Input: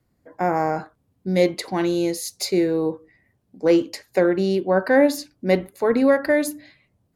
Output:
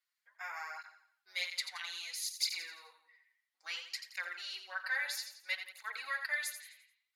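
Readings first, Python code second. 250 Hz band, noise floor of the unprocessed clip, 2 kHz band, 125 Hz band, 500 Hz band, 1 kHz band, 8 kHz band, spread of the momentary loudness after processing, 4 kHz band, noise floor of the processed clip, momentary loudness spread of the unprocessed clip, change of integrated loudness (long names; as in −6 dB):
below −40 dB, −69 dBFS, −7.5 dB, below −40 dB, −40.0 dB, −20.5 dB, −8.0 dB, 13 LU, −4.5 dB, below −85 dBFS, 9 LU, −17.5 dB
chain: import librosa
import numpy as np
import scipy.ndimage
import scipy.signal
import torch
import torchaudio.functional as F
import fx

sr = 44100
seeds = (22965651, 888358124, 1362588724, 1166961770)

p1 = fx.octave_divider(x, sr, octaves=1, level_db=-2.0)
p2 = scipy.signal.sosfilt(scipy.signal.butter(4, 1300.0, 'highpass', fs=sr, output='sos'), p1)
p3 = fx.peak_eq(p2, sr, hz=3400.0, db=6.5, octaves=1.5)
p4 = p3 + fx.echo_feedback(p3, sr, ms=86, feedback_pct=42, wet_db=-9.0, dry=0)
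p5 = fx.flanger_cancel(p4, sr, hz=0.6, depth_ms=6.9)
y = p5 * 10.0 ** (-7.5 / 20.0)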